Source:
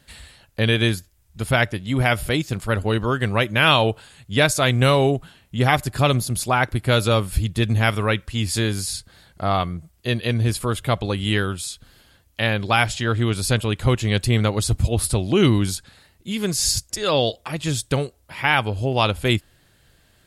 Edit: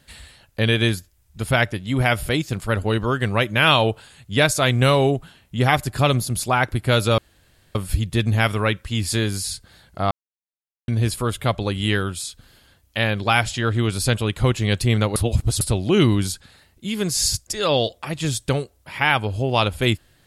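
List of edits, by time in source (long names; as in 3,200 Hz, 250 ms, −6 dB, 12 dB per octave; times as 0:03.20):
0:07.18: splice in room tone 0.57 s
0:09.54–0:10.31: silence
0:14.59–0:15.04: reverse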